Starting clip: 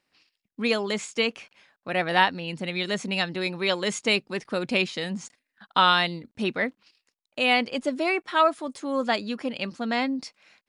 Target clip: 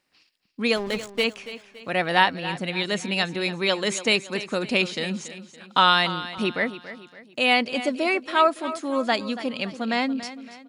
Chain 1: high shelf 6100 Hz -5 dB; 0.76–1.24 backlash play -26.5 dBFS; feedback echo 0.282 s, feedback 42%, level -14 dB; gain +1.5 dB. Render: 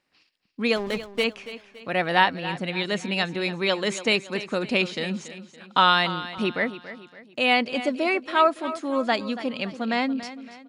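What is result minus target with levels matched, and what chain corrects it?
8000 Hz band -4.5 dB
high shelf 6100 Hz +3.5 dB; 0.76–1.24 backlash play -26.5 dBFS; feedback echo 0.282 s, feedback 42%, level -14 dB; gain +1.5 dB

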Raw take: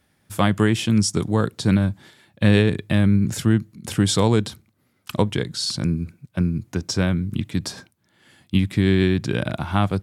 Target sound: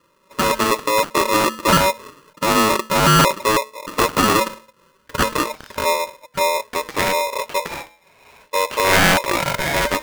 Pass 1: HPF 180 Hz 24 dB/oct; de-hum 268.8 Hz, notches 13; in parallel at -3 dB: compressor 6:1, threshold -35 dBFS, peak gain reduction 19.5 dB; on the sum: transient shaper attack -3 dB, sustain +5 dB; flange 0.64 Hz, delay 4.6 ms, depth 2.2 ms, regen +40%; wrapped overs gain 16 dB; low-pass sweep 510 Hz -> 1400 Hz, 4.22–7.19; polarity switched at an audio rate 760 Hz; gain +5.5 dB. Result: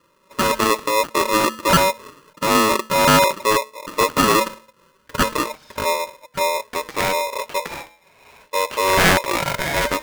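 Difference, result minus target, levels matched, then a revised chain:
compressor: peak gain reduction +8.5 dB
HPF 180 Hz 24 dB/oct; de-hum 268.8 Hz, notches 13; in parallel at -3 dB: compressor 6:1, threshold -25 dBFS, peak gain reduction 11 dB; on the sum: transient shaper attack -3 dB, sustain +5 dB; flange 0.64 Hz, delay 4.6 ms, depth 2.2 ms, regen +40%; wrapped overs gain 16 dB; low-pass sweep 510 Hz -> 1400 Hz, 4.22–7.19; polarity switched at an audio rate 760 Hz; gain +5.5 dB

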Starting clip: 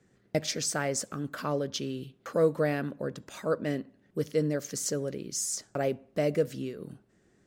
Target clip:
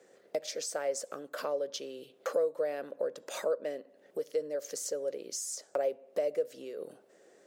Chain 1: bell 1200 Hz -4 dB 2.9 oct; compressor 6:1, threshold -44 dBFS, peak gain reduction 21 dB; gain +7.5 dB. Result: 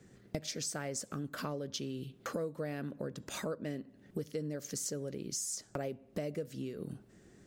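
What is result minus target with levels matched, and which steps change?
500 Hz band -4.5 dB
add after compressor: resonant high-pass 530 Hz, resonance Q 3.7

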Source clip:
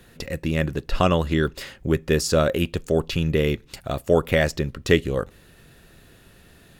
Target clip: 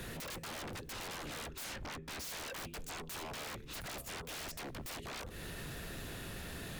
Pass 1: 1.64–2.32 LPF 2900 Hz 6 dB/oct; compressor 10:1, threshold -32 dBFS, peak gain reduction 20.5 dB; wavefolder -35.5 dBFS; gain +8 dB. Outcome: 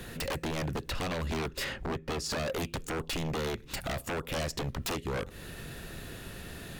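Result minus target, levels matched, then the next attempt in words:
wavefolder: distortion -18 dB
1.64–2.32 LPF 2900 Hz 6 dB/oct; compressor 10:1, threshold -32 dBFS, peak gain reduction 20.5 dB; wavefolder -47 dBFS; gain +8 dB

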